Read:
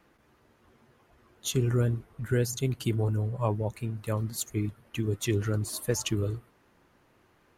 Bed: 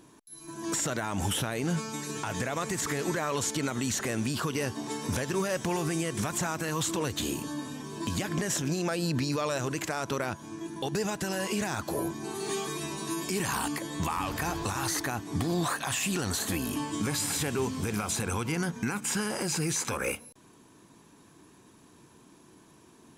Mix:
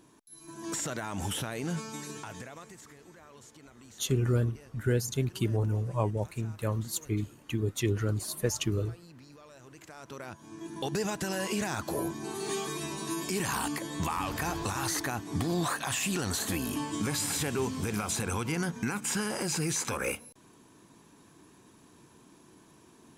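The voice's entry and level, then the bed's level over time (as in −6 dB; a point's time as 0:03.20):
2.55 s, −1.0 dB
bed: 0:02.05 −4 dB
0:02.99 −23.5 dB
0:09.50 −23.5 dB
0:10.79 −1 dB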